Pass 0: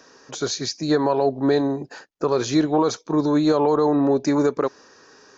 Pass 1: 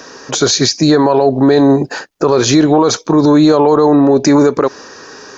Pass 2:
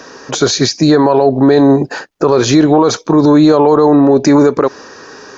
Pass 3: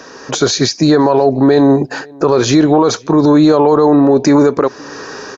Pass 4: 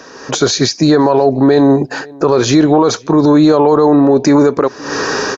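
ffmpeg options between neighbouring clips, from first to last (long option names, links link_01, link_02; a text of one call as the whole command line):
ffmpeg -i in.wav -af "alimiter=level_in=17.5dB:limit=-1dB:release=50:level=0:latency=1,volume=-1dB" out.wav
ffmpeg -i in.wav -af "highshelf=frequency=4200:gain=-5.5,volume=1dB" out.wav
ffmpeg -i in.wav -filter_complex "[0:a]dynaudnorm=framelen=130:gausssize=3:maxgain=6.5dB,asplit=2[link_01][link_02];[link_02]adelay=524.8,volume=-26dB,highshelf=frequency=4000:gain=-11.8[link_03];[link_01][link_03]amix=inputs=2:normalize=0,volume=-1dB" out.wav
ffmpeg -i in.wav -af "dynaudnorm=framelen=130:gausssize=3:maxgain=13dB,volume=-1dB" out.wav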